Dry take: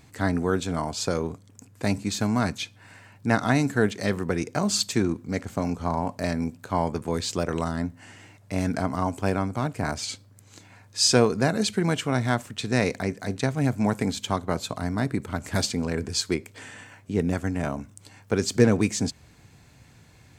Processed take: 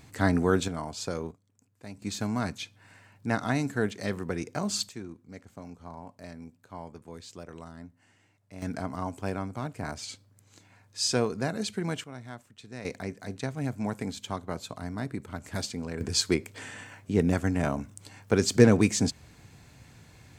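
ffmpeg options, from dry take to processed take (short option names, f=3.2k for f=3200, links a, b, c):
-af "asetnsamples=n=441:p=0,asendcmd='0.68 volume volume -7dB;1.31 volume volume -18.5dB;2.02 volume volume -6dB;4.89 volume volume -17dB;8.62 volume volume -7.5dB;12.04 volume volume -18.5dB;12.85 volume volume -8dB;16.01 volume volume 0.5dB',volume=0.5dB"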